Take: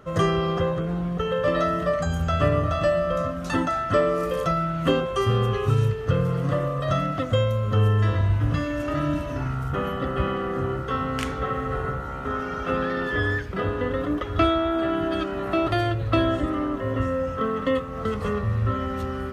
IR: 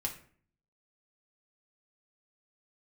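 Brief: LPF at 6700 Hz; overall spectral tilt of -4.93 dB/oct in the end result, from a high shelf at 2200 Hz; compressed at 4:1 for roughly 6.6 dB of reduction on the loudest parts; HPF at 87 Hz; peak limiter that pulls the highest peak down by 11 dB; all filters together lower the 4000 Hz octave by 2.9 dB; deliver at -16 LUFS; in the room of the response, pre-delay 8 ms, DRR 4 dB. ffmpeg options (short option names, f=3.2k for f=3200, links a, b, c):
-filter_complex "[0:a]highpass=87,lowpass=6.7k,highshelf=f=2.2k:g=5.5,equalizer=f=4k:t=o:g=-9,acompressor=threshold=-24dB:ratio=4,alimiter=limit=-23.5dB:level=0:latency=1,asplit=2[a][b];[1:a]atrim=start_sample=2205,adelay=8[c];[b][c]afir=irnorm=-1:irlink=0,volume=-5.5dB[d];[a][d]amix=inputs=2:normalize=0,volume=14.5dB"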